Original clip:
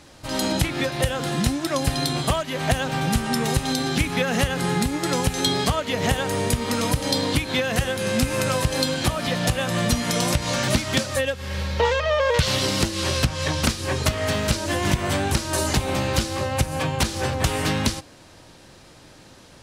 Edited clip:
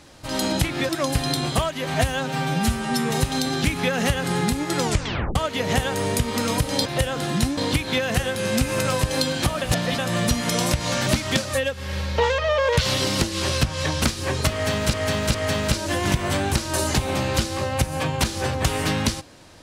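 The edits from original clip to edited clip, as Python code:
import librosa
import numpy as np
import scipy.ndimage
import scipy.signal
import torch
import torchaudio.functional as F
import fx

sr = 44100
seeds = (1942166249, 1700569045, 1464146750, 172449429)

y = fx.edit(x, sr, fx.move(start_s=0.89, length_s=0.72, to_s=7.19),
    fx.stretch_span(start_s=2.66, length_s=0.77, factor=1.5),
    fx.tape_stop(start_s=5.16, length_s=0.53),
    fx.reverse_span(start_s=9.23, length_s=0.37),
    fx.repeat(start_s=14.14, length_s=0.41, count=3), tone=tone)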